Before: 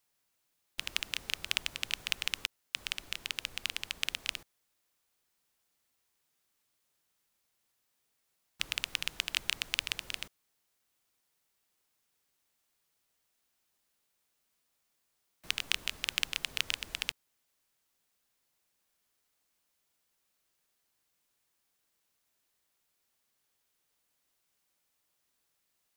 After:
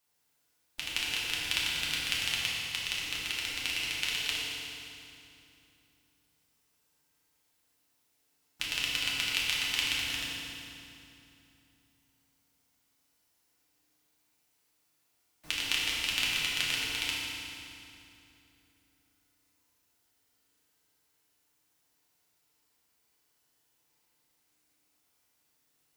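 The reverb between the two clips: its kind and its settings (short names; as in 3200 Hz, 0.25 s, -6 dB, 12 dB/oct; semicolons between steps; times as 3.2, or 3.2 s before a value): FDN reverb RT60 2.8 s, low-frequency decay 1.4×, high-frequency decay 0.85×, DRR -6.5 dB; gain -2.5 dB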